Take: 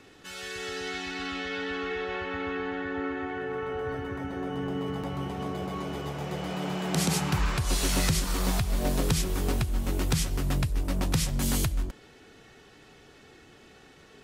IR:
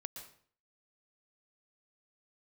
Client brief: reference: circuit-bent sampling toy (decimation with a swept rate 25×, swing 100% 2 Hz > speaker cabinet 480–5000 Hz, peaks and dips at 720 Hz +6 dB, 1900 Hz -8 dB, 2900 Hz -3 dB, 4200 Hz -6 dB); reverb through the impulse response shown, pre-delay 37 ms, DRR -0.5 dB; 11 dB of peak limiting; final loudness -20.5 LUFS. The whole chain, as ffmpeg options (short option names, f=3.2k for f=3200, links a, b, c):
-filter_complex "[0:a]alimiter=level_in=0.5dB:limit=-24dB:level=0:latency=1,volume=-0.5dB,asplit=2[a][b];[1:a]atrim=start_sample=2205,adelay=37[c];[b][c]afir=irnorm=-1:irlink=0,volume=3.5dB[d];[a][d]amix=inputs=2:normalize=0,acrusher=samples=25:mix=1:aa=0.000001:lfo=1:lforange=25:lforate=2,highpass=480,equalizer=f=720:t=q:w=4:g=6,equalizer=f=1.9k:t=q:w=4:g=-8,equalizer=f=2.9k:t=q:w=4:g=-3,equalizer=f=4.2k:t=q:w=4:g=-6,lowpass=f=5k:w=0.5412,lowpass=f=5k:w=1.3066,volume=15.5dB"